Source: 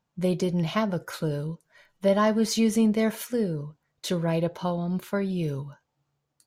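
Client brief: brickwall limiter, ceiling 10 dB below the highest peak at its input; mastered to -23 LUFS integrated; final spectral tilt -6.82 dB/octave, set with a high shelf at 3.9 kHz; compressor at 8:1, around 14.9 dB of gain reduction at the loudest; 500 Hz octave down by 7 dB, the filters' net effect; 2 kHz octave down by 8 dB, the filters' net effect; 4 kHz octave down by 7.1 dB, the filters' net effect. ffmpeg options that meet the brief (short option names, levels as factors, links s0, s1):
-af "equalizer=f=500:t=o:g=-8.5,equalizer=f=2000:t=o:g=-8,highshelf=f=3900:g=-4,equalizer=f=4000:t=o:g=-4,acompressor=threshold=0.0158:ratio=8,volume=11.2,alimiter=limit=0.188:level=0:latency=1"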